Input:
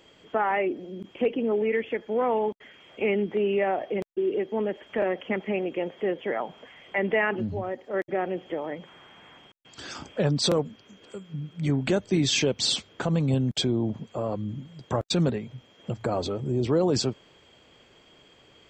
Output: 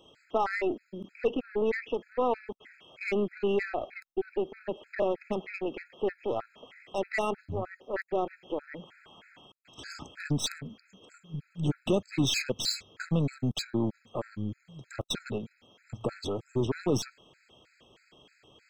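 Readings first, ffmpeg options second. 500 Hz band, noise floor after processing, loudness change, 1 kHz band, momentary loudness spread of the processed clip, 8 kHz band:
−5.0 dB, −69 dBFS, −5.0 dB, −4.5 dB, 15 LU, −4.5 dB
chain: -af "aeval=exprs='0.237*(cos(1*acos(clip(val(0)/0.237,-1,1)))-cos(1*PI/2))+0.0133*(cos(8*acos(clip(val(0)/0.237,-1,1)))-cos(8*PI/2))':channel_layout=same,afftfilt=real='re*gt(sin(2*PI*3.2*pts/sr)*(1-2*mod(floor(b*sr/1024/1300),2)),0)':imag='im*gt(sin(2*PI*3.2*pts/sr)*(1-2*mod(floor(b*sr/1024/1300),2)),0)':win_size=1024:overlap=0.75,volume=-1.5dB"

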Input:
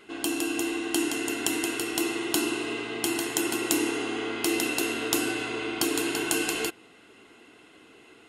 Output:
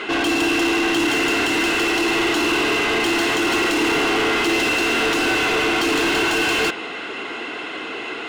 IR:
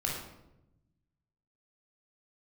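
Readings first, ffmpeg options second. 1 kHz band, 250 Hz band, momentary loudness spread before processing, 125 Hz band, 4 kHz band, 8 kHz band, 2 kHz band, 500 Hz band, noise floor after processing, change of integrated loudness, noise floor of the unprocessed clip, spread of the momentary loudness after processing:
+13.5 dB, +7.5 dB, 5 LU, +10.0 dB, +10.5 dB, +1.0 dB, +13.0 dB, +9.5 dB, −30 dBFS, +9.0 dB, −55 dBFS, 10 LU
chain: -filter_complex "[0:a]lowpass=5800,alimiter=limit=-16.5dB:level=0:latency=1:release=181,asplit=2[link_01][link_02];[link_02]highpass=frequency=720:poles=1,volume=30dB,asoftclip=type=tanh:threshold=-16.5dB[link_03];[link_01][link_03]amix=inputs=2:normalize=0,lowpass=frequency=2900:poles=1,volume=-6dB,volume=5dB"

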